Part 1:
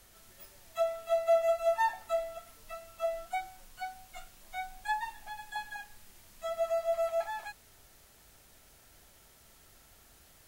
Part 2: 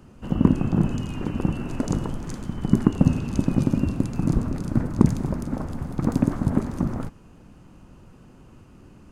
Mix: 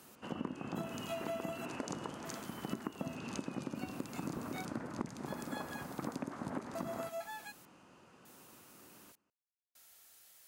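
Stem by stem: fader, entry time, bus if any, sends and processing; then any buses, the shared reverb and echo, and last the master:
-7.5 dB, 0.00 s, no send, no echo send, bass shelf 210 Hz -8 dB; trance gate "x....xxxxx" 100 bpm -60 dB; tilt EQ +2.5 dB/octave
-3.5 dB, 0.00 s, no send, echo send -21 dB, frequency weighting A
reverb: none
echo: delay 181 ms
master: compression 6:1, threshold -36 dBFS, peak gain reduction 14 dB

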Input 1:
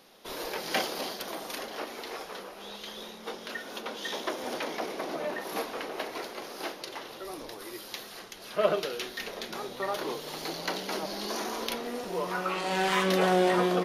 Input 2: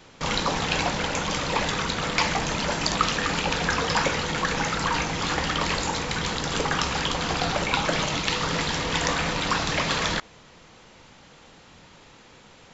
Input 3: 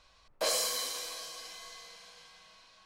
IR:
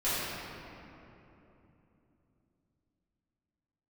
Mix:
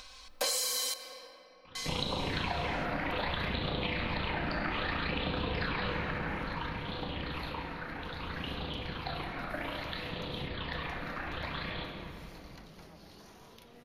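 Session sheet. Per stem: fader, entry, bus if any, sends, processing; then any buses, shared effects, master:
-15.0 dB, 1.90 s, no send, compression 4:1, threshold -39 dBFS, peak gain reduction 17 dB
5.89 s -1.5 dB -> 6.12 s -11.5 dB, 1.65 s, send -8 dB, elliptic low-pass 4.2 kHz, stop band 40 dB; AM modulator 29 Hz, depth 55%; phase shifter stages 8, 0.61 Hz, lowest notch 120–1900 Hz
+2.0 dB, 0.00 s, muted 0.94–1.75 s, send -23.5 dB, treble shelf 2.3 kHz +8 dB; comb 3.9 ms, depth 94%; upward compressor, threshold -49 dBFS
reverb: on, RT60 3.1 s, pre-delay 4 ms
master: compression 6:1, threshold -30 dBFS, peak gain reduction 13.5 dB

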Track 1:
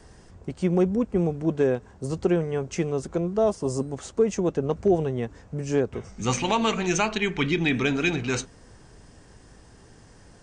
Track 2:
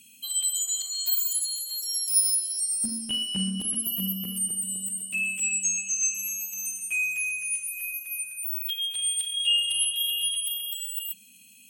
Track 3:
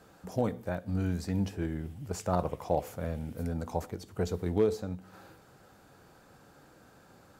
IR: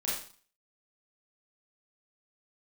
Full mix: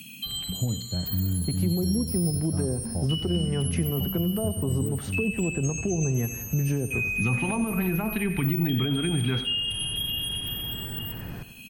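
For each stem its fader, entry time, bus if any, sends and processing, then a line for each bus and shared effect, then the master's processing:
+1.0 dB, 1.00 s, no send, echo send -14.5 dB, low-pass that closes with the level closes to 690 Hz, closed at -18 dBFS; treble shelf 4.6 kHz -6.5 dB; peak limiter -19 dBFS, peak gain reduction 7.5 dB
-3.5 dB, 0.00 s, no send, echo send -8.5 dB, none
-13.0 dB, 0.25 s, no send, no echo send, tilt EQ -4.5 dB/octave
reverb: none
echo: feedback delay 91 ms, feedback 44%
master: graphic EQ 125/500/1000/8000 Hz +6/-7/-4/-11 dB; three bands compressed up and down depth 70%

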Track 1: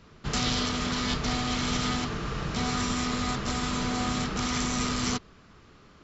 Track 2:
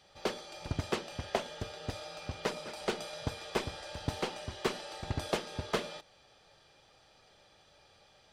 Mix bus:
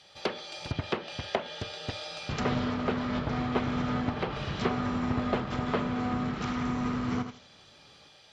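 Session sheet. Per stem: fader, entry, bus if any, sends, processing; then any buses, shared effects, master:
-0.5 dB, 2.05 s, no send, echo send -9 dB, treble shelf 5.2 kHz +8.5 dB; upward expansion 1.5:1, over -40 dBFS
+2.0 dB, 0.00 s, no send, no echo send, peaking EQ 3.6 kHz +7.5 dB 1.9 oct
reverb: none
echo: feedback delay 81 ms, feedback 20%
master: low-pass that closes with the level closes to 1.5 kHz, closed at -25 dBFS; high-pass 93 Hz 6 dB/octave; peaking EQ 120 Hz +3 dB 1.2 oct

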